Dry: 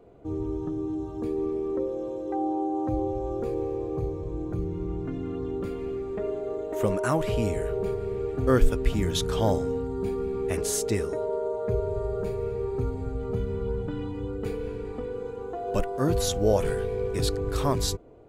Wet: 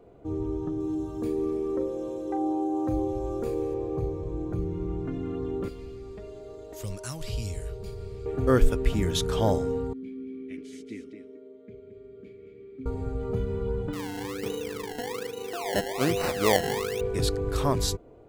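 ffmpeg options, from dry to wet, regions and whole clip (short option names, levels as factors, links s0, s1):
-filter_complex "[0:a]asettb=1/sr,asplit=3[s0][s1][s2];[s0]atrim=end=0.804[s3];[s1]atrim=start=0.8:end=3.74,asetpts=PTS-STARTPTS,afade=t=in:d=0.004:c=qsin,afade=t=out:st=2.936:d=0.004:c=qsin,aemphasis=mode=production:type=cd,asplit=2[s4][s5];[s5]adelay=39,volume=0.266[s6];[s4][s6]amix=inputs=2:normalize=0,atrim=end_sample=129654[s7];[s2]atrim=start=3.736[s8];[s3][s7]acrossfade=d=0.004:c1=hsin:c2=qsin[s9];[s9][s8]acrossfade=d=0.004:c1=qsin:c2=hsin,asettb=1/sr,asplit=3[s10][s11][s12];[s10]atrim=end=5.684[s13];[s11]atrim=start=5.68:end=8.26,asetpts=PTS-STARTPTS,afade=t=in:d=0.004:c=qsin,afade=t=out:st=2.576:d=0.004:c=qsin,equalizer=f=4800:t=o:w=0.47:g=8,acrossover=split=120|3000[s14][s15][s16];[s15]acompressor=threshold=0.00794:ratio=4:attack=3.2:release=140:knee=2.83:detection=peak[s17];[s14][s17][s16]amix=inputs=3:normalize=0[s18];[s12]atrim=start=8.256[s19];[s13][s18]acrossfade=d=0.004:c1=hsin:c2=qsin[s20];[s20][s19]acrossfade=d=0.004:c1=qsin:c2=hsin,asettb=1/sr,asplit=3[s21][s22][s23];[s21]atrim=end=9.934[s24];[s22]atrim=start=9.93:end=12.86,asetpts=PTS-STARTPTS,afade=t=in:d=0.004:c=qsin,afade=t=out:st=2.926:d=0.004:c=qsin,asplit=3[s25][s26][s27];[s25]bandpass=f=270:t=q:w=8,volume=1[s28];[s26]bandpass=f=2290:t=q:w=8,volume=0.501[s29];[s27]bandpass=f=3010:t=q:w=8,volume=0.355[s30];[s28][s29][s30]amix=inputs=3:normalize=0,aecho=1:1:222:0.355,atrim=end_sample=129213[s31];[s23]atrim=start=12.856[s32];[s24][s31]acrossfade=d=0.004:c1=hsin:c2=qsin[s33];[s33][s32]acrossfade=d=0.004:c1=qsin:c2=hsin,asettb=1/sr,asplit=3[s34][s35][s36];[s34]atrim=end=13.934[s37];[s35]atrim=start=13.93:end=17.01,asetpts=PTS-STARTPTS,afade=t=in:d=0.004:c=qsin,afade=t=out:st=3.076:d=0.004:c=qsin,highpass=150,acrusher=samples=25:mix=1:aa=0.000001:lfo=1:lforange=25:lforate=1.2[s38];[s36]atrim=start=17.006[s39];[s37][s38]acrossfade=d=0.004:c1=hsin:c2=qsin[s40];[s40][s39]acrossfade=d=0.004:c1=qsin:c2=hsin"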